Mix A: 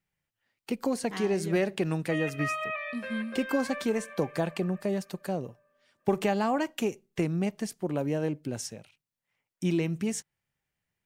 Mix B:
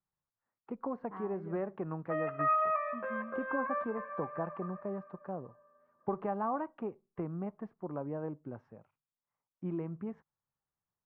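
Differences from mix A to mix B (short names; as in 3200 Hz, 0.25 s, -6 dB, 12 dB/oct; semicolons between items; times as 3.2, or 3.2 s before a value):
background +10.5 dB; master: add ladder low-pass 1300 Hz, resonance 55%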